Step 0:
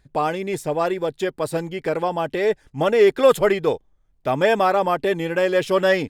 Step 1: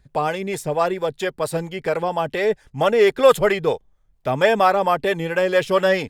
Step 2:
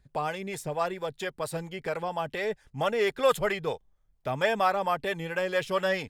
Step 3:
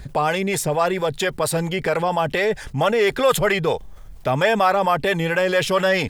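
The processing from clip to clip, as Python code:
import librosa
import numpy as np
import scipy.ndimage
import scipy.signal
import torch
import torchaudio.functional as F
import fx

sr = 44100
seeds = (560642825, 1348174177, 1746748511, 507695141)

y1 = fx.peak_eq(x, sr, hz=310.0, db=-6.0, octaves=0.57)
y1 = fx.harmonic_tremolo(y1, sr, hz=4.4, depth_pct=50, crossover_hz=450.0)
y1 = y1 * librosa.db_to_amplitude(4.0)
y2 = fx.dynamic_eq(y1, sr, hz=360.0, q=0.81, threshold_db=-29.0, ratio=4.0, max_db=-5)
y2 = y2 * librosa.db_to_amplitude(-7.0)
y3 = fx.env_flatten(y2, sr, amount_pct=50)
y3 = y3 * librosa.db_to_amplitude(5.0)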